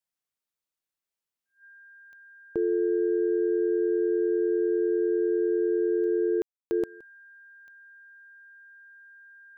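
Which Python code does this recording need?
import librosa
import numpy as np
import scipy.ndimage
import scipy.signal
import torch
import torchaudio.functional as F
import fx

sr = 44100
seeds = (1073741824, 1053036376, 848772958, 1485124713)

y = fx.fix_declick_ar(x, sr, threshold=10.0)
y = fx.notch(y, sr, hz=1600.0, q=30.0)
y = fx.fix_ambience(y, sr, seeds[0], print_start_s=1.45, print_end_s=1.95, start_s=6.42, end_s=6.71)
y = fx.fix_echo_inverse(y, sr, delay_ms=169, level_db=-23.5)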